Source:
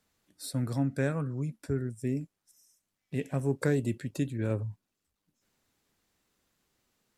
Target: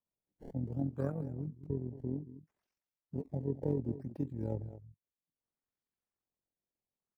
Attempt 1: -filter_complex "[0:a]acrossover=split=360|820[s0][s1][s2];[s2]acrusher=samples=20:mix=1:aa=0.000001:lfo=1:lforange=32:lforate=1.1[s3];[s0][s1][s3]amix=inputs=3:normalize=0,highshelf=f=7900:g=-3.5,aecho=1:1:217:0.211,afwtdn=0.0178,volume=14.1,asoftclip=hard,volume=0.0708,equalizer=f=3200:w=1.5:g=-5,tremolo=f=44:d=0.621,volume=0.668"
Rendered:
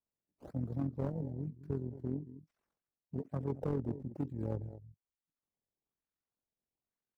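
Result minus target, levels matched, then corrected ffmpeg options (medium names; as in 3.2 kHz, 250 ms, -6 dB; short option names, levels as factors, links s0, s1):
overload inside the chain: distortion +33 dB; decimation with a swept rate: distortion +10 dB
-filter_complex "[0:a]acrossover=split=360|820[s0][s1][s2];[s2]acrusher=samples=20:mix=1:aa=0.000001:lfo=1:lforange=32:lforate=0.64[s3];[s0][s1][s3]amix=inputs=3:normalize=0,highshelf=f=7900:g=-3.5,aecho=1:1:217:0.211,afwtdn=0.0178,volume=6.31,asoftclip=hard,volume=0.158,equalizer=f=3200:w=1.5:g=-5,tremolo=f=44:d=0.621,volume=0.668"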